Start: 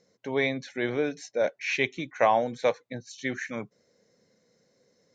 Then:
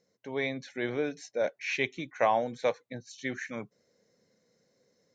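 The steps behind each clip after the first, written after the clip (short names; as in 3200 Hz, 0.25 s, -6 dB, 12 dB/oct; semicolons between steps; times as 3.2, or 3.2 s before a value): AGC gain up to 3.5 dB; gain -7 dB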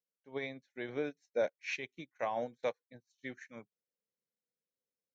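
limiter -22.5 dBFS, peak gain reduction 8 dB; upward expander 2.5:1, over -49 dBFS; gain +1 dB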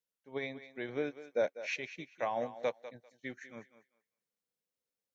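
thinning echo 0.197 s, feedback 20%, high-pass 380 Hz, level -12.5 dB; gain +1 dB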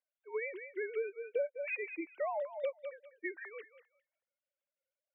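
sine-wave speech; compressor 4:1, threshold -43 dBFS, peak gain reduction 16.5 dB; gain +8.5 dB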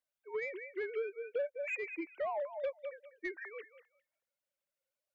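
soft clip -29.5 dBFS, distortion -19 dB; gain +1 dB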